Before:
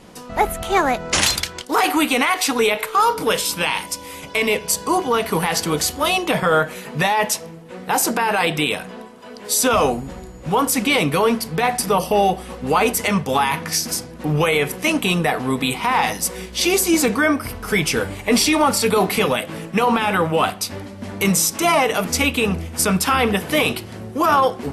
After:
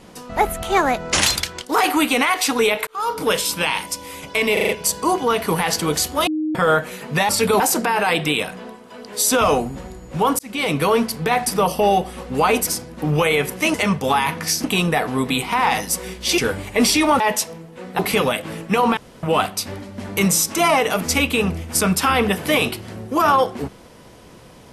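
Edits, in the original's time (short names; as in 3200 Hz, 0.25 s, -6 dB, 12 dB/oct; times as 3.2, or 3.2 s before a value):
2.87–3.25 fade in
4.53 stutter 0.04 s, 5 plays
6.11–6.39 bleep 310 Hz -19 dBFS
7.13–7.92 swap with 18.72–19.03
10.71–11.12 fade in
12.99–13.89 move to 14.96
16.7–17.9 cut
20.01–20.27 room tone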